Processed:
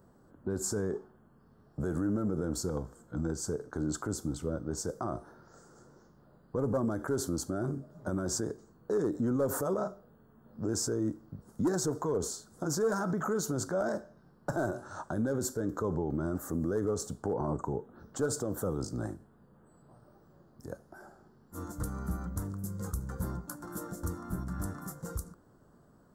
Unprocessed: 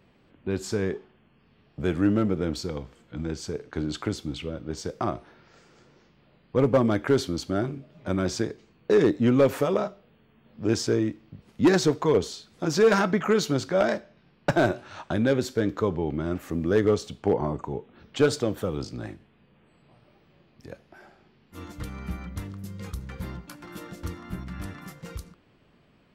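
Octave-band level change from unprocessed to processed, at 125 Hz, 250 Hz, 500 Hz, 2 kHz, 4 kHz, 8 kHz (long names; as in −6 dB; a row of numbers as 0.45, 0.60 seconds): −5.5, −7.0, −9.0, −11.5, −10.5, +2.0 decibels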